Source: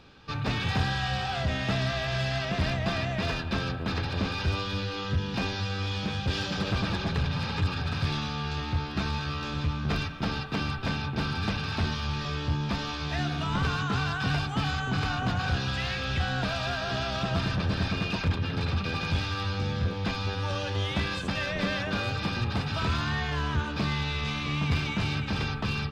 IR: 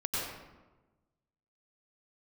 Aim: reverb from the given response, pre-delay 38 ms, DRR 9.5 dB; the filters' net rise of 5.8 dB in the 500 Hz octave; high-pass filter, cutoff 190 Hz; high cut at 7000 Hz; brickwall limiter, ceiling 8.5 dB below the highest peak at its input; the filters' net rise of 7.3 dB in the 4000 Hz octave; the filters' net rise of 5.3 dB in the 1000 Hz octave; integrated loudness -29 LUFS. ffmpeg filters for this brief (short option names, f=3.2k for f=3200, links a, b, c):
-filter_complex "[0:a]highpass=190,lowpass=7k,equalizer=f=500:t=o:g=6,equalizer=f=1k:t=o:g=4.5,equalizer=f=4k:t=o:g=9,alimiter=limit=-21dB:level=0:latency=1,asplit=2[a][b];[1:a]atrim=start_sample=2205,adelay=38[c];[b][c]afir=irnorm=-1:irlink=0,volume=-15.5dB[d];[a][d]amix=inputs=2:normalize=0"